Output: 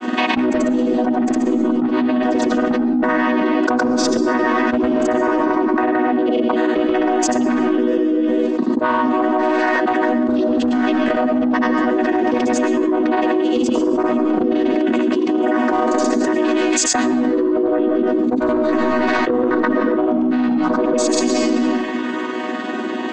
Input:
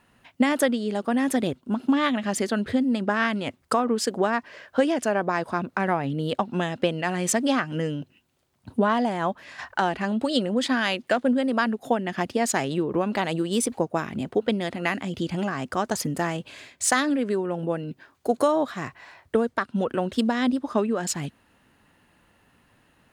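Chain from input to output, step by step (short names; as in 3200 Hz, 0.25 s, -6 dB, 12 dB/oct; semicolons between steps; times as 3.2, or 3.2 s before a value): chord vocoder major triad, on B3; in parallel at +2.5 dB: level quantiser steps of 9 dB; on the sum: soft clip -12.5 dBFS, distortion -14 dB; grains, pitch spread up and down by 0 st; on a send at -7 dB: reverb RT60 1.0 s, pre-delay 75 ms; on the sum: fast leveller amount 100%; gain -1.5 dB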